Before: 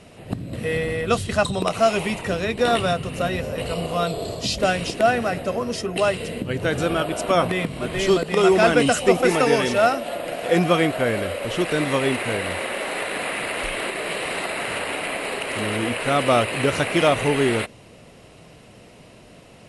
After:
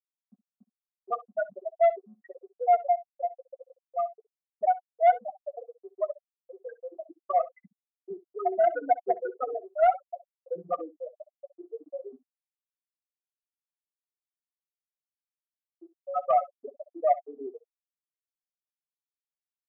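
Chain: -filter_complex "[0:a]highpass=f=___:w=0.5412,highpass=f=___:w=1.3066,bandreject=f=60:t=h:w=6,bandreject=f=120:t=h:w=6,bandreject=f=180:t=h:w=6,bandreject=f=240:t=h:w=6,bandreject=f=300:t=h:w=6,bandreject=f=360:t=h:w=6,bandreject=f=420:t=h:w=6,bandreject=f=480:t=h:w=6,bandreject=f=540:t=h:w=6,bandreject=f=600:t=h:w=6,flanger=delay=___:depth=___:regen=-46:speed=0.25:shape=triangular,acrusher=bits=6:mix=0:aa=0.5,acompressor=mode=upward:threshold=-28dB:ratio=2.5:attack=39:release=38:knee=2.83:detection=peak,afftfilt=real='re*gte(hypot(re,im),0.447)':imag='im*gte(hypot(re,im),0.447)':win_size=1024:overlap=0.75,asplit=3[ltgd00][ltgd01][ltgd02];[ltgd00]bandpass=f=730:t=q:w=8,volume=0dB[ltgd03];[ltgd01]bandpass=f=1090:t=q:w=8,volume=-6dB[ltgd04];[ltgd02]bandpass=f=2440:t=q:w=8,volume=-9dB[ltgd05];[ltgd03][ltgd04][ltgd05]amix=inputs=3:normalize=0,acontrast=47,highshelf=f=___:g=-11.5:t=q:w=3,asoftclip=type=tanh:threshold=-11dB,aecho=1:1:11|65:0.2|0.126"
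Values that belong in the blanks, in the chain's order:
150, 150, 9.1, 1.6, 2500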